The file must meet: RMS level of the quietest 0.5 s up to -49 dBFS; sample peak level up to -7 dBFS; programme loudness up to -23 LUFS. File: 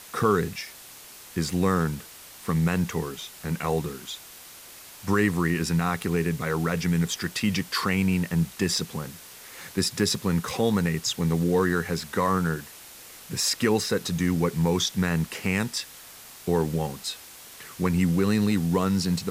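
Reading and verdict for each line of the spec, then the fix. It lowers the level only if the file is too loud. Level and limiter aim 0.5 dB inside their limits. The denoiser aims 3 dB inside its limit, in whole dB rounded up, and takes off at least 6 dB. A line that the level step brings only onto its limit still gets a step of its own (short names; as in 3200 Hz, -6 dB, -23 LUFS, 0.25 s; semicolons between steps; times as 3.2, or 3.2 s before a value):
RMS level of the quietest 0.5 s -46 dBFS: fail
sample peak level -9.5 dBFS: OK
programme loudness -26.0 LUFS: OK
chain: denoiser 6 dB, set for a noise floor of -46 dBFS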